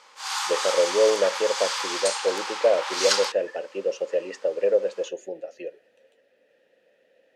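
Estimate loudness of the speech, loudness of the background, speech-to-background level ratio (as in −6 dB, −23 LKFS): −25.5 LKFS, −27.0 LKFS, 1.5 dB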